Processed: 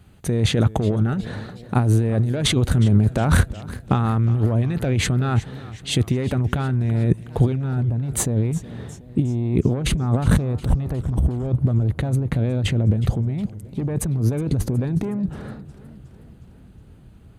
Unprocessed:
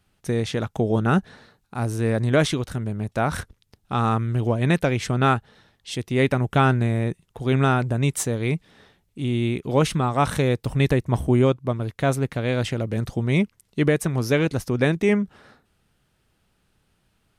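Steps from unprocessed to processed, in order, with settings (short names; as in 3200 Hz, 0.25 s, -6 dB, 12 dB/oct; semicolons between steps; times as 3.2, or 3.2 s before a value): tilt shelf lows +4 dB, about 640 Hz, from 7.56 s lows +8.5 dB; soft clip -11 dBFS, distortion -13 dB; negative-ratio compressor -27 dBFS, ratio -1; HPF 43 Hz; low shelf 140 Hz +5 dB; notch 5400 Hz, Q 5.1; warbling echo 0.364 s, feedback 57%, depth 104 cents, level -18 dB; gain +5 dB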